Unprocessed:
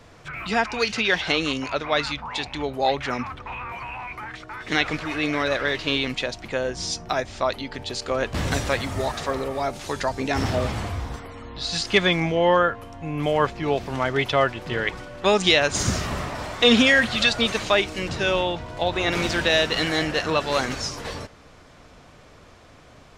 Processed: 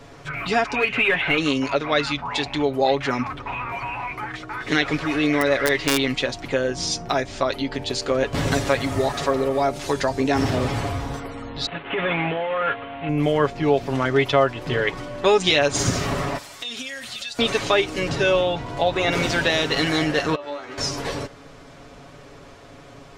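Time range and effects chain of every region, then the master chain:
0.75–1.38 s: overload inside the chain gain 21 dB + resonant high shelf 3.6 kHz -13 dB, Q 3
5.30–6.15 s: peaking EQ 2 kHz +8.5 dB 0.22 oct + integer overflow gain 9 dB
11.66–13.09 s: CVSD coder 16 kbps + compressor with a negative ratio -25 dBFS + tilt EQ +3 dB/octave
16.38–17.39 s: pre-emphasis filter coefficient 0.9 + compression 10:1, threshold -32 dBFS
20.35–20.78 s: tone controls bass -13 dB, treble -13 dB + compression 10:1, threshold -25 dBFS + feedback comb 97 Hz, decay 0.31 s, mix 90%
whole clip: peaking EQ 380 Hz +4 dB 1.6 oct; comb 7.2 ms, depth 57%; compression 1.5:1, threshold -24 dBFS; trim +2.5 dB

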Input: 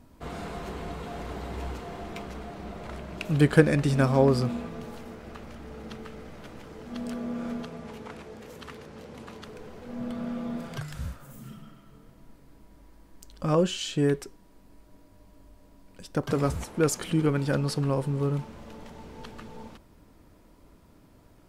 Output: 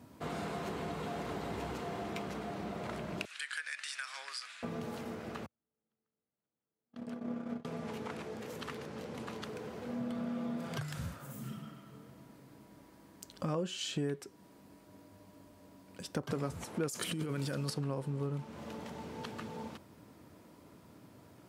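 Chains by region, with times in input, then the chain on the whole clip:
3.25–4.63 s: Chebyshev band-pass 1.6–9.9 kHz, order 3 + compression 2.5:1, threshold -37 dBFS
5.46–7.65 s: gate -33 dBFS, range -50 dB + treble shelf 3.5 kHz -8.5 dB
16.88–17.70 s: treble shelf 4.1 kHz +11 dB + compressor with a negative ratio -28 dBFS + Butterworth band-stop 820 Hz, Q 7.6
whole clip: high-pass 93 Hz 24 dB/octave; compression 3:1, threshold -37 dBFS; trim +1 dB

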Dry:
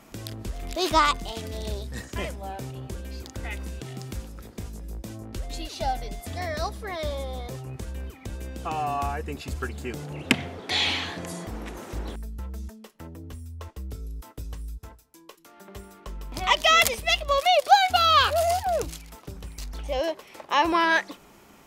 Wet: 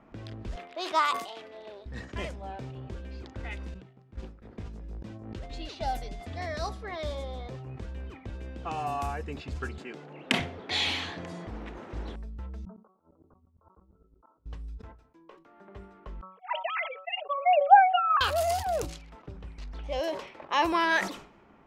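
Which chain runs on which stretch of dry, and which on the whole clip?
0.56–1.86 s: high-pass 510 Hz + peaking EQ 6.6 kHz -6.5 dB 1.7 oct
3.74–4.42 s: gate -33 dBFS, range -18 dB + companded quantiser 8-bit
5.02–5.51 s: gate with hold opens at -26 dBFS, closes at -35 dBFS + high-pass 61 Hz + swell ahead of each attack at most 45 dB/s
9.78–10.40 s: high-pass 160 Hz 24 dB/octave + bass shelf 350 Hz -7 dB
12.65–14.46 s: steep low-pass 1.4 kHz 96 dB/octave + tilt EQ +4 dB/octave + sawtooth tremolo in dB swelling 8.7 Hz, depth 33 dB
16.21–18.21 s: formants replaced by sine waves + expander -40 dBFS
whole clip: de-hum 187.7 Hz, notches 7; level-controlled noise filter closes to 1.5 kHz, open at -22.5 dBFS; decay stretcher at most 100 dB/s; trim -4 dB

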